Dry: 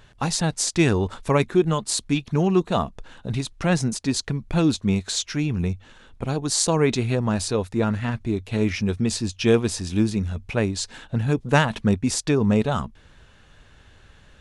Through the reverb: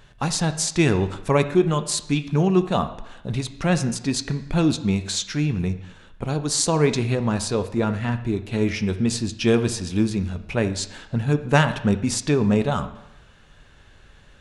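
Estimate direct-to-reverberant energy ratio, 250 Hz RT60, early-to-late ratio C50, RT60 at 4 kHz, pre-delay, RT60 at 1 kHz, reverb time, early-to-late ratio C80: 9.0 dB, 0.85 s, 12.5 dB, 0.85 s, 5 ms, 0.90 s, 0.90 s, 15.0 dB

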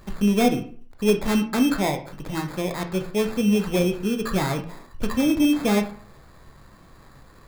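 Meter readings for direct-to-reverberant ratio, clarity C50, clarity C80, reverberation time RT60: 5.0 dB, 11.0 dB, 15.0 dB, 0.50 s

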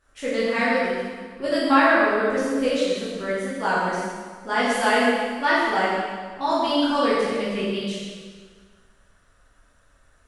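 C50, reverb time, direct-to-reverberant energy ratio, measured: −2.0 dB, 1.6 s, −9.5 dB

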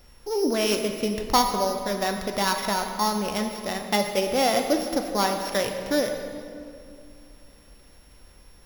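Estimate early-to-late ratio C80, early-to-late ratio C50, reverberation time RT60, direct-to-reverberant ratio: 7.0 dB, 6.0 dB, 2.4 s, 4.0 dB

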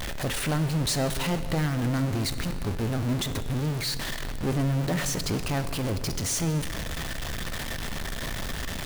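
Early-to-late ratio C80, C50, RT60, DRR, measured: 12.0 dB, 11.5 dB, 2.6 s, 10.0 dB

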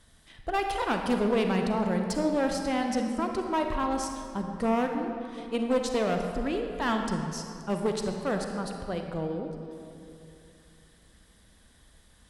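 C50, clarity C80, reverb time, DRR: 4.0 dB, 5.0 dB, 2.7 s, 3.5 dB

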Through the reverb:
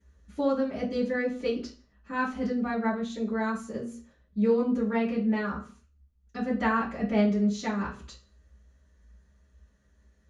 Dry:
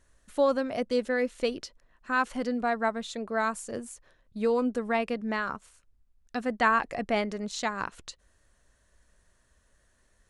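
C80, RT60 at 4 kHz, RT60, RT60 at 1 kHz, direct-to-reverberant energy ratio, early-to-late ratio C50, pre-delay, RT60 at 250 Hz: 13.5 dB, 0.40 s, 0.40 s, 0.45 s, −14.5 dB, 8.5 dB, 3 ms, 0.50 s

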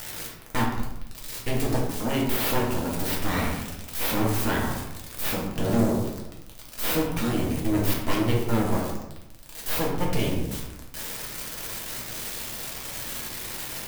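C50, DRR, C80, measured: 3.5 dB, −3.0 dB, 6.5 dB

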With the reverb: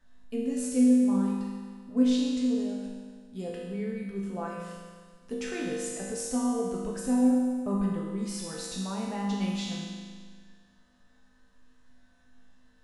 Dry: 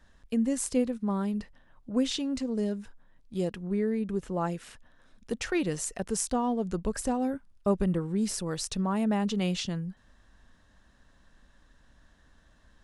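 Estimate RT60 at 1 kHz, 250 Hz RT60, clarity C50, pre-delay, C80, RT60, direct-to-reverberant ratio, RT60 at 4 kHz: 1.7 s, 1.7 s, −0.5 dB, 4 ms, 1.5 dB, 1.7 s, −5.0 dB, 1.7 s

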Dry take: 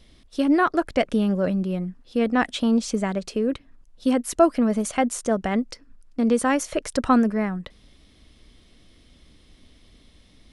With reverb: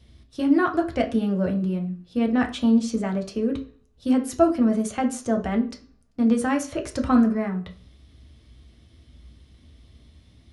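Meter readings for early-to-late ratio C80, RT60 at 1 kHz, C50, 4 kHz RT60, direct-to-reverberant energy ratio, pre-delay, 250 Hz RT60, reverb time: 18.0 dB, 0.50 s, 12.5 dB, 0.45 s, 2.0 dB, 3 ms, 0.45 s, 0.45 s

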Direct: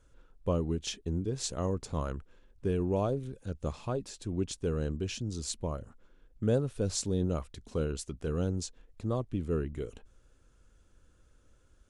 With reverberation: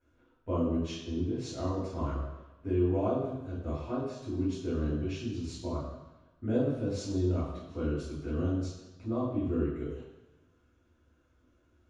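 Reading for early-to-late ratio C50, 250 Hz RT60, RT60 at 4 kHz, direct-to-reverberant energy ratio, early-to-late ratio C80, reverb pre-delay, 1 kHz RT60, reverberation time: 1.0 dB, 0.95 s, 1.1 s, −10.5 dB, 4.5 dB, 3 ms, 1.1 s, 1.1 s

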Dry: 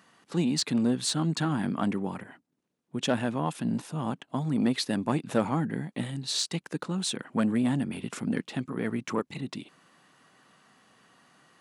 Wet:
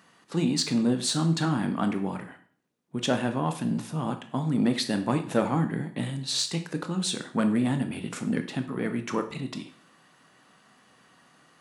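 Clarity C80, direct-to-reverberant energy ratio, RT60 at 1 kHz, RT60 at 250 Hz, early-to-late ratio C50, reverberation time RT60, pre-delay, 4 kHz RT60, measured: 15.5 dB, 6.5 dB, 0.50 s, 0.50 s, 11.5 dB, 0.50 s, 7 ms, 0.45 s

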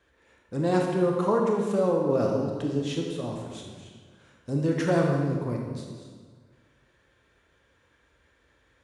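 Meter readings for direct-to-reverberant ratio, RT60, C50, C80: 0.0 dB, 1.6 s, 2.0 dB, 4.0 dB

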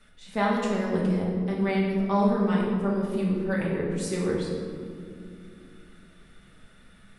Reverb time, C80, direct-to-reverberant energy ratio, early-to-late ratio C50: 2.4 s, 2.5 dB, −4.5 dB, 1.0 dB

